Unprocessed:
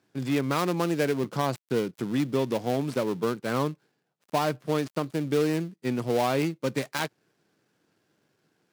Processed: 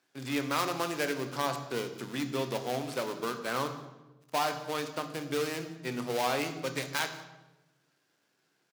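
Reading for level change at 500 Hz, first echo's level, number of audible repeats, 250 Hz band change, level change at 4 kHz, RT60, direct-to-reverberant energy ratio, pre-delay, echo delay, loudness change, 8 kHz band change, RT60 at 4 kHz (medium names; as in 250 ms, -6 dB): -6.5 dB, -21.5 dB, 1, -8.5 dB, +0.5 dB, 1.1 s, 7.0 dB, 3 ms, 178 ms, -5.0 dB, +1.0 dB, 0.75 s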